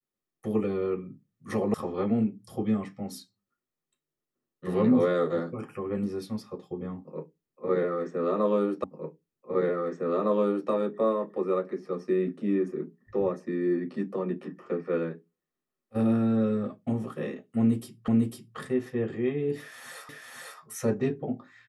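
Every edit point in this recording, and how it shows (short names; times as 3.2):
1.74 sound cut off
8.84 repeat of the last 1.86 s
18.08 repeat of the last 0.5 s
20.09 repeat of the last 0.5 s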